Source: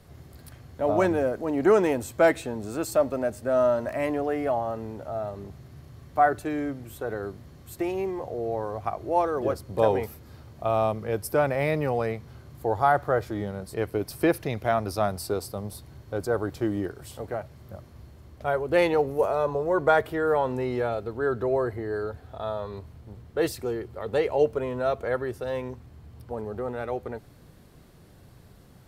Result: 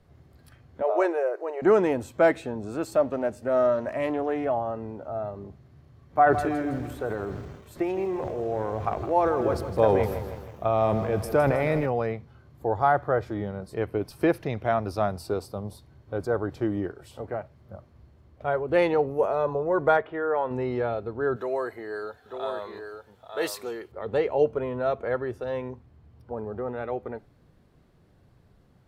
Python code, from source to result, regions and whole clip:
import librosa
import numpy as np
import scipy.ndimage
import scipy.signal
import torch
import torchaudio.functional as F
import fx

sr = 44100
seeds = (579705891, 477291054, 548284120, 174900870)

y = fx.chain(x, sr, fx.brickwall_highpass(low_hz=330.0),
    fx.notch(hz=3300.0, q=7.1), at=(0.82, 1.62))
y = fx.chain(y, sr, fx.high_shelf(hz=4800.0, db=4.0),
    fx.doppler_dist(depth_ms=0.13), at=(3.04, 4.45))
y = fx.chain(y, sr, fx.notch(hz=2900.0, q=24.0),
    fx.transient(attack_db=2, sustain_db=9),
    fx.echo_crushed(ms=160, feedback_pct=55, bits=7, wet_db=-10.5), at=(6.1, 11.86))
y = fx.chain(y, sr, fx.lowpass(hz=2800.0, slope=12),
    fx.low_shelf(hz=330.0, db=-8.0), at=(19.97, 20.51))
y = fx.chain(y, sr, fx.tilt_eq(slope=3.5),
    fx.echo_single(ms=896, db=-6.0), at=(21.36, 23.92))
y = fx.lowpass(y, sr, hz=2800.0, slope=6)
y = fx.noise_reduce_blind(y, sr, reduce_db=7)